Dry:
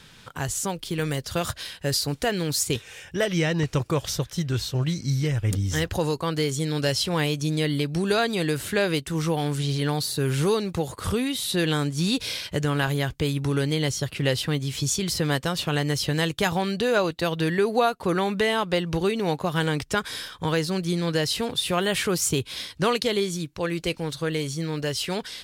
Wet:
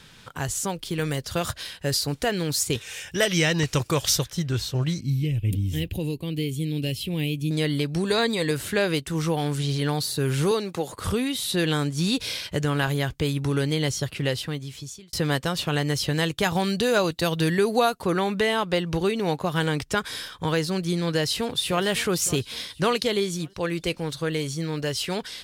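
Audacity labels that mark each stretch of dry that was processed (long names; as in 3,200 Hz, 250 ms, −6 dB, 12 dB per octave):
2.810000	4.280000	high-shelf EQ 2,100 Hz +9.5 dB
5.000000	7.510000	drawn EQ curve 300 Hz 0 dB, 670 Hz −14 dB, 1,400 Hz −25 dB, 2,600 Hz +1 dB, 5,900 Hz −16 dB, 13,000 Hz +2 dB
8.040000	8.510000	EQ curve with evenly spaced ripples crests per octave 1, crest to trough 8 dB
10.510000	10.930000	high-pass filter 220 Hz
14.050000	15.130000	fade out
16.550000	18.040000	bass and treble bass +3 dB, treble +7 dB
21.140000	21.850000	delay throw 560 ms, feedback 45%, level −16.5 dB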